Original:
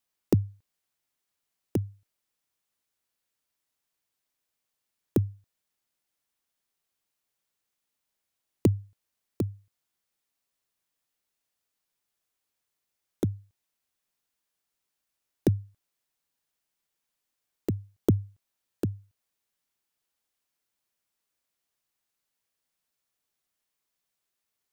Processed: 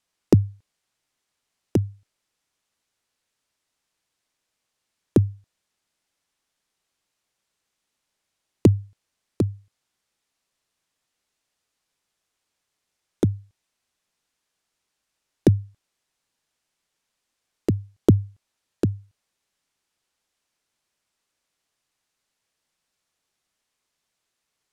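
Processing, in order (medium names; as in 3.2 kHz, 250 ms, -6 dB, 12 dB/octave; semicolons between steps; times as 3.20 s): low-pass 8.9 kHz 12 dB/octave; trim +7 dB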